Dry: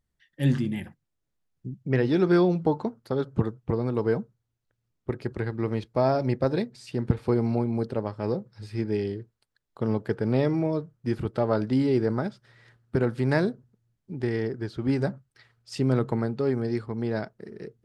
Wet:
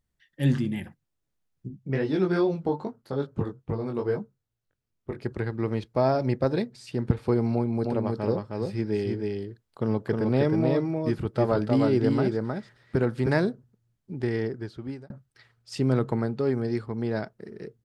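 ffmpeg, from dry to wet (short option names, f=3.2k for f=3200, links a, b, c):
-filter_complex "[0:a]asettb=1/sr,asplit=3[a][b][c];[a]atrim=end=1.684[d];[b]atrim=start=1.68:end=5.23,asetpts=PTS-STARTPTS,afade=t=in:d=0.004:c=qsin,afade=t=out:st=3.546:d=0.004:c=qsin,flanger=delay=19:depth=2.9:speed=2.4[e];[c]atrim=start=5.226[f];[d][e]acrossfade=d=0.004:c1=hsin:c2=qsin[g];[g][f]acrossfade=d=0.004:c1=qsin:c2=hsin,asplit=3[h][i][j];[h]afade=t=out:st=7.84:d=0.02[k];[i]aecho=1:1:313:0.708,afade=t=in:st=7.84:d=0.02,afade=t=out:st=13.28:d=0.02[l];[j]afade=t=in:st=13.28:d=0.02[m];[k][l][m]amix=inputs=3:normalize=0,asplit=2[n][o];[n]atrim=end=15.1,asetpts=PTS-STARTPTS,afade=t=out:st=14.44:d=0.66[p];[o]atrim=start=15.1,asetpts=PTS-STARTPTS,afade=t=in:d=0.004:c=hsin[q];[p][q]concat=n=2:v=0:a=1"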